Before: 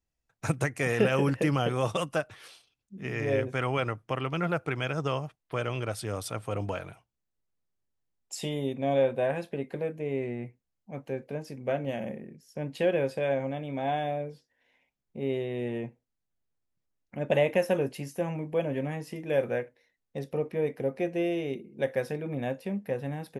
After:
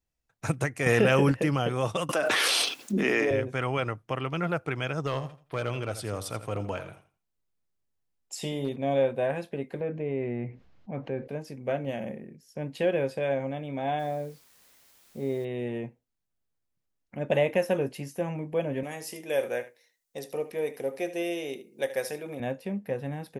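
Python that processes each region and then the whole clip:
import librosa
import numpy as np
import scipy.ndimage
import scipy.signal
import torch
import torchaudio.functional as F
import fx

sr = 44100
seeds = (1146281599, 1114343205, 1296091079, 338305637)

y = fx.chain(x, sr, fx.quant_float(bits=8),
    fx.env_flatten(amount_pct=70), at=(0.86, 1.32))
y = fx.chain(y, sr, fx.highpass(hz=240.0, slope=24),
    fx.env_flatten(amount_pct=100), at=(2.09, 3.31))
y = fx.chain(y, sr, fx.overload_stage(gain_db=21.5),
    fx.echo_feedback(ms=84, feedback_pct=23, wet_db=-13.0), at=(5.05, 8.76))
y = fx.chain(y, sr, fx.air_absorb(metres=250.0),
    fx.env_flatten(amount_pct=50), at=(9.8, 11.28))
y = fx.chain(y, sr, fx.peak_eq(hz=2800.0, db=-15.0, octaves=0.41),
    fx.quant_dither(seeds[0], bits=10, dither='triangular'), at=(13.99, 15.45))
y = fx.chain(y, sr, fx.bass_treble(bass_db=-13, treble_db=13),
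    fx.echo_single(ms=75, db=-14.5), at=(18.83, 22.4))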